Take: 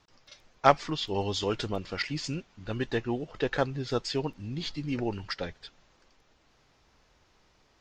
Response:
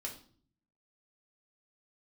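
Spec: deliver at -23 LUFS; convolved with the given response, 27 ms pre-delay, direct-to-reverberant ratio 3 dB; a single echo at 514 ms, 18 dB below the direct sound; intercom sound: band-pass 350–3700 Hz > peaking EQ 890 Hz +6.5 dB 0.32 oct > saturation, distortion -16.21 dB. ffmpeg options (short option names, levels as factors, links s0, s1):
-filter_complex "[0:a]aecho=1:1:514:0.126,asplit=2[s0][s1];[1:a]atrim=start_sample=2205,adelay=27[s2];[s1][s2]afir=irnorm=-1:irlink=0,volume=0.794[s3];[s0][s3]amix=inputs=2:normalize=0,highpass=350,lowpass=3700,equalizer=f=890:t=o:w=0.32:g=6.5,asoftclip=threshold=0.398,volume=2.51"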